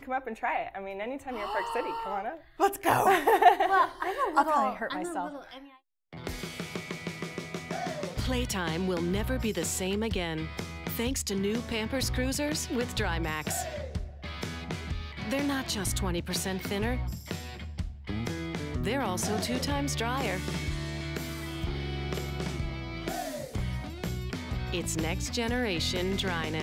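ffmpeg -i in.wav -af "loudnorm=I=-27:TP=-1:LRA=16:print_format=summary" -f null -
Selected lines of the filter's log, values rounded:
Input Integrated:    -30.9 LUFS
Input True Peak:      -7.4 dBTP
Input LRA:             7.5 LU
Input Threshold:     -41.0 LUFS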